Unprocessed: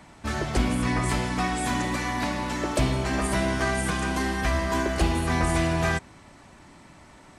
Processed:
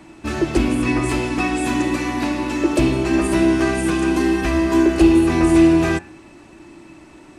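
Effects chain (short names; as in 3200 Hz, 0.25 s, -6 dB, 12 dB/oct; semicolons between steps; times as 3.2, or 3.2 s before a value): de-hum 91.47 Hz, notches 30; small resonant body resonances 330/2600 Hz, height 17 dB, ringing for 60 ms; gain +2 dB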